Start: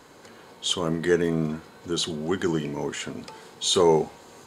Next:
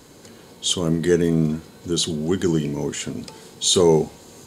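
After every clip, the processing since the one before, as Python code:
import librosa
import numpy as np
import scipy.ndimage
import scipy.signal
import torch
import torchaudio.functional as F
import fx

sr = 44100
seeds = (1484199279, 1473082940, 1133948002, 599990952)

y = fx.peak_eq(x, sr, hz=1200.0, db=-12.0, octaves=2.9)
y = F.gain(torch.from_numpy(y), 9.0).numpy()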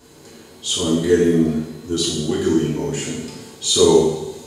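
y = fx.rev_double_slope(x, sr, seeds[0], early_s=0.82, late_s=2.2, knee_db=-18, drr_db=-7.5)
y = F.gain(torch.from_numpy(y), -6.0).numpy()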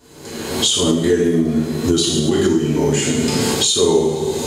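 y = fx.recorder_agc(x, sr, target_db=-5.5, rise_db_per_s=43.0, max_gain_db=30)
y = F.gain(torch.from_numpy(y), -2.0).numpy()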